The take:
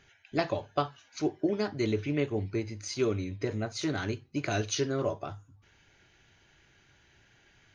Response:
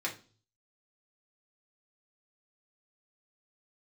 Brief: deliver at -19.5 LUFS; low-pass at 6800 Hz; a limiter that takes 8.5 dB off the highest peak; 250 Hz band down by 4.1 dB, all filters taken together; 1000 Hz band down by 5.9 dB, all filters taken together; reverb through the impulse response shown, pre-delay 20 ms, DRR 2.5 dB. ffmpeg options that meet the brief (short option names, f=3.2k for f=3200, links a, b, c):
-filter_complex "[0:a]lowpass=6.8k,equalizer=f=250:t=o:g=-5,equalizer=f=1k:t=o:g=-9,alimiter=level_in=2dB:limit=-24dB:level=0:latency=1,volume=-2dB,asplit=2[a][b];[1:a]atrim=start_sample=2205,adelay=20[c];[b][c]afir=irnorm=-1:irlink=0,volume=-7dB[d];[a][d]amix=inputs=2:normalize=0,volume=16dB"